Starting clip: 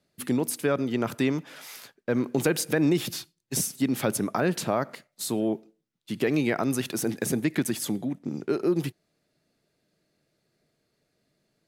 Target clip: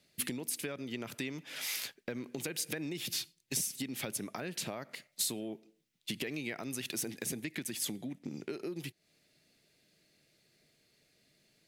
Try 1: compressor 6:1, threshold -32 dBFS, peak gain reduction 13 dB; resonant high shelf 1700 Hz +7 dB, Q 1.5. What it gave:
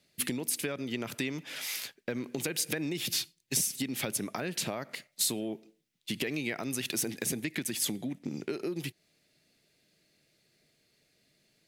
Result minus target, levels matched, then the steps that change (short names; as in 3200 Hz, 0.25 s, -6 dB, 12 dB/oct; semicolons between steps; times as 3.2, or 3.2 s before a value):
compressor: peak gain reduction -5 dB
change: compressor 6:1, threshold -38 dBFS, peak gain reduction 18 dB